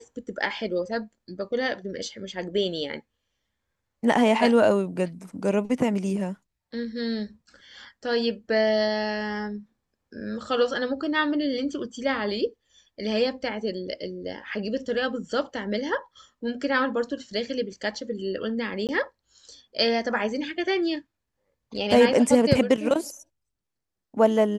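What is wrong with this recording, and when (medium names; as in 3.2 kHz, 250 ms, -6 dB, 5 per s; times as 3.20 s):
18.87–18.89 s: dropout 18 ms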